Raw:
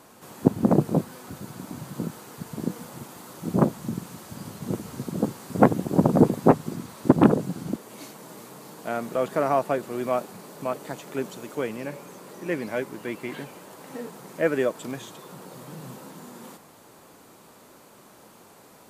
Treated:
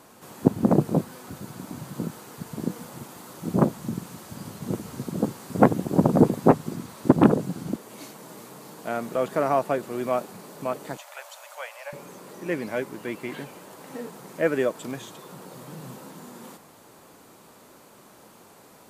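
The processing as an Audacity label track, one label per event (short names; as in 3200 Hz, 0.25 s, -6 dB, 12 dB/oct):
10.970000	11.930000	Chebyshev high-pass 570 Hz, order 6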